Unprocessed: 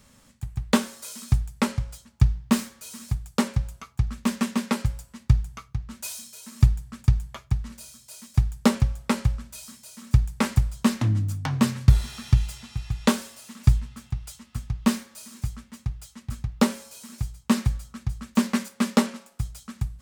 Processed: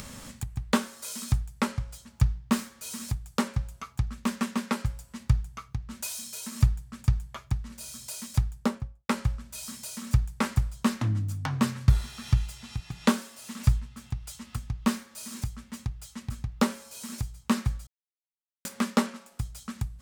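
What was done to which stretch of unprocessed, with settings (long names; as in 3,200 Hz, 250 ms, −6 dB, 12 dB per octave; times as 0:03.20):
0:08.40–0:09.09: fade out and dull
0:12.80–0:13.38: low shelf with overshoot 120 Hz −13.5 dB, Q 1.5
0:17.87–0:18.65: silence
whole clip: dynamic equaliser 1,300 Hz, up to +4 dB, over −45 dBFS, Q 1.5; upward compression, threshold −23 dBFS; level −4.5 dB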